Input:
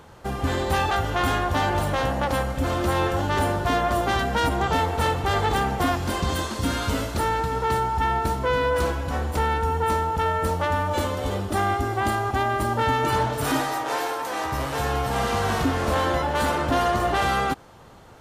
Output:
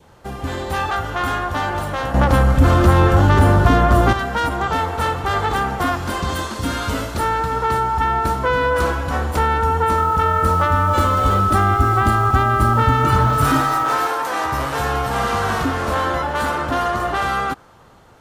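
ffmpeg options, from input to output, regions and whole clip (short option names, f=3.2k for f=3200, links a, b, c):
-filter_complex "[0:a]asettb=1/sr,asplit=3[a][b][c];[a]atrim=end=2.144[d];[b]atrim=start=2.14:end=4.13,asetpts=PTS-STARTPTS,afade=t=in:d=0.004:c=qsin,afade=t=out:st=1.986:d=0.004:c=qsin,lowshelf=f=250:g=10.5,acontrast=75[e];[c]atrim=start=4.126[f];[d][e]acrossfade=d=0.004:c1=hsin:c2=qsin[g];[g][f]acrossfade=d=0.004:c1=qsin:c2=hsin,asettb=1/sr,asplit=3[h][i][j];[h]atrim=end=9.984[k];[i]atrim=start=9.98:end=14.07,asetpts=PTS-STARTPTS,afade=t=in:d=0.004:c=qsin,afade=t=out:st=4.086:d=0.004:c=qsin,acrusher=bits=6:mix=0:aa=0.5,aeval=exprs='val(0)+0.0447*sin(2*PI*1300*n/s)':c=same,asubboost=boost=2.5:cutoff=240[l];[j]atrim=start=14.066[m];[k][l]acrossfade=d=0.004:c1=hsin:c2=qsin[n];[n][m]acrossfade=d=0.004:c1=qsin:c2=hsin,dynaudnorm=f=690:g=13:m=11.5dB,adynamicequalizer=threshold=0.0282:dfrequency=1300:dqfactor=1.7:tfrequency=1300:tqfactor=1.7:attack=5:release=100:ratio=0.375:range=3.5:mode=boostabove:tftype=bell,acrossover=split=460[o][p];[p]acompressor=threshold=-14dB:ratio=6[q];[o][q]amix=inputs=2:normalize=0,volume=-1dB"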